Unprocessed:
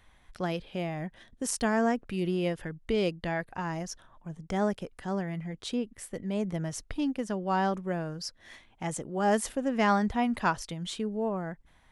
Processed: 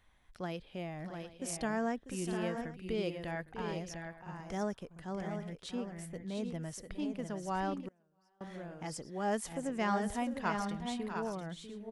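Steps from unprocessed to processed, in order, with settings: tapped delay 0.645/0.699/0.808 s -11.5/-6.5/-17.5 dB; 7.88–8.41 flipped gate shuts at -28 dBFS, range -33 dB; gain -8 dB

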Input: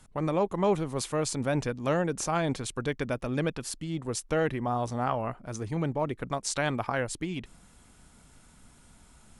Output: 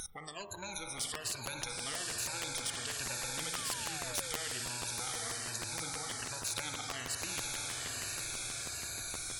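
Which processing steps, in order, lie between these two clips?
moving spectral ripple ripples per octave 1.4, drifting -1.2 Hz, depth 22 dB; fifteen-band EQ 100 Hz +10 dB, 250 Hz -11 dB, 4000 Hz +5 dB; on a send at -9 dB: reverb RT60 1.4 s, pre-delay 47 ms; on the sum: compressor 2:1, threshold -41 dBFS, peak gain reduction 13 dB; high shelf 8900 Hz +9.5 dB; diffused feedback echo 0.936 s, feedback 52%, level -6 dB; spectral noise reduction 21 dB; de-hum 85.95 Hz, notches 16; painted sound fall, 3.53–4.37, 450–1300 Hz -29 dBFS; in parallel at -7 dB: soft clip -23 dBFS, distortion -22 dB; on the sum: crackling interface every 0.16 s, samples 512, repeat, from 0.97; spectral compressor 4:1

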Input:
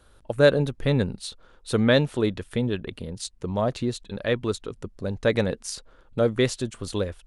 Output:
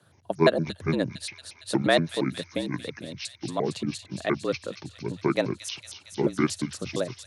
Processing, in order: trilling pitch shifter -9.5 st, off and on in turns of 0.116 s; harmonic-percussive split harmonic -8 dB; frequency shift +77 Hz; thin delay 0.229 s, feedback 74%, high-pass 3500 Hz, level -6 dB

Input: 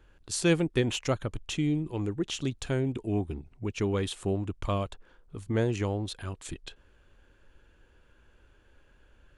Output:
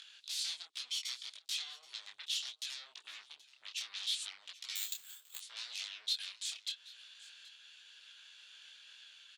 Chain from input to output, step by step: 0.83–1.31 minimum comb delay 0.91 ms; 2.74–3.25 high shelf 4500 Hz -7.5 dB; in parallel at -3 dB: upward compressor, threshold -29 dBFS; on the sum: transient shaper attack +6 dB, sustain +1 dB; compressor 8:1, threshold -23 dBFS, peak gain reduction 12 dB; sine folder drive 20 dB, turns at -11.5 dBFS; ladder band-pass 4400 Hz, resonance 50%; echo 0.777 s -19.5 dB; 4.75–5.39 careless resampling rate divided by 4×, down none, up zero stuff; detuned doubles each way 24 cents; gain -6 dB

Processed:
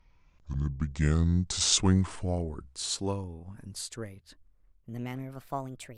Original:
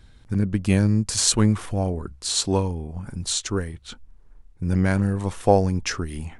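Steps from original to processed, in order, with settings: speed glide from 54% -> 160%; Doppler pass-by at 1.71, 29 m/s, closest 26 m; gain -5 dB

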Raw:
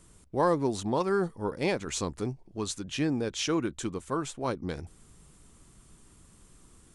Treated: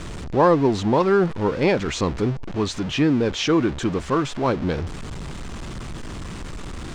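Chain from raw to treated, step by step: zero-crossing step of -34 dBFS; air absorption 140 m; gain +8.5 dB

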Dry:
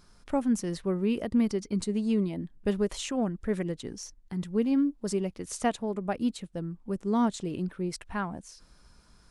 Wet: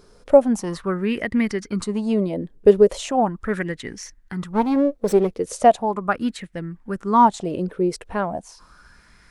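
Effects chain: 4.53–5.33 minimum comb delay 0.49 ms; LFO bell 0.38 Hz 440–2000 Hz +17 dB; gain +4 dB

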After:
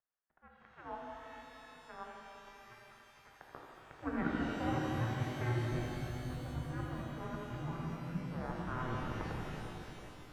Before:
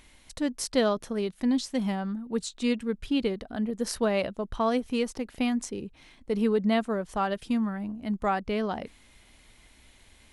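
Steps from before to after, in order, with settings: tape stop at the end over 2.62 s; low shelf 500 Hz -8.5 dB; reverse; compressor 6:1, threshold -38 dBFS, peak gain reduction 14 dB; reverse; high-pass sweep 1200 Hz -> 140 Hz, 3.27–6.42; in parallel at -6 dB: soft clip -38.5 dBFS, distortion -10 dB; on the sum: power-law curve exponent 3; split-band echo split 650 Hz, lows 0.229 s, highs 83 ms, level -7.5 dB; mistuned SSB -360 Hz 180–2100 Hz; shimmer reverb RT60 3.3 s, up +12 st, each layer -8 dB, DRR -2 dB; gain +10.5 dB

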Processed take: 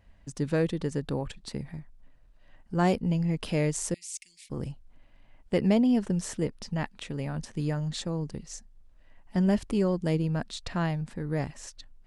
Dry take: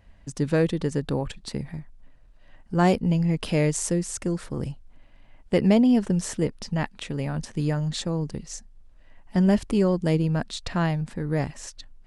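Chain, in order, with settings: 3.94–4.5 elliptic high-pass 2200 Hz, stop band 40 dB; gain -4.5 dB

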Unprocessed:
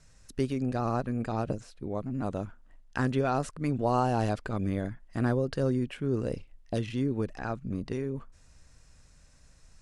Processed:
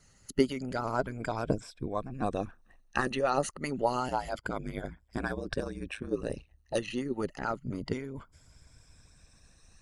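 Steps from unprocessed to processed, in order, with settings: moving spectral ripple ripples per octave 1.7, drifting +0.28 Hz, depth 12 dB; harmonic-percussive split harmonic -17 dB; 4.08–6.75 ring modulator 54 Hz; gain +4.5 dB

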